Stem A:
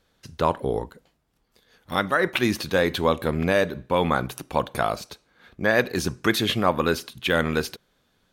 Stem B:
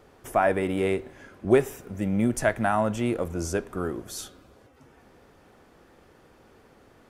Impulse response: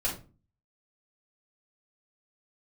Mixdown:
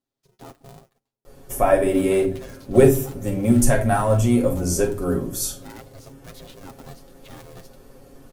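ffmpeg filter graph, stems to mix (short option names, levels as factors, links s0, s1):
-filter_complex "[0:a]aeval=exprs='val(0)*sgn(sin(2*PI*280*n/s))':c=same,volume=0.119[s0];[1:a]highshelf=f=5500:g=8,adelay=1250,volume=1.19,asplit=2[s1][s2];[s2]volume=0.668[s3];[2:a]atrim=start_sample=2205[s4];[s3][s4]afir=irnorm=-1:irlink=0[s5];[s0][s1][s5]amix=inputs=3:normalize=0,equalizer=f=1800:t=o:w=2.6:g=-9.5,aecho=1:1:7.4:0.65"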